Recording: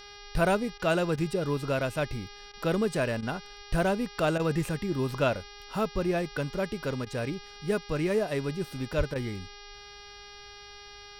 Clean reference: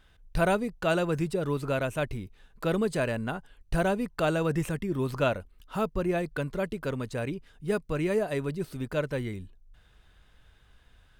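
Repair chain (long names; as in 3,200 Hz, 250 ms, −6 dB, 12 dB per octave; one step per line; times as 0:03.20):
hum removal 408.6 Hz, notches 14
0:08.97–0:09.09: high-pass filter 140 Hz 24 dB per octave
repair the gap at 0:00.78/0:01.16/0:02.52/0:03.21/0:04.38/0:07.05/0:09.14, 14 ms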